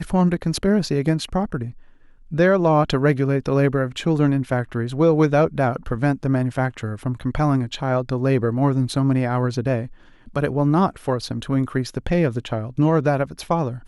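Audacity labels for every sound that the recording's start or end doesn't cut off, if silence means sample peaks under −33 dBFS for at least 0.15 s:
2.320000	9.870000	sound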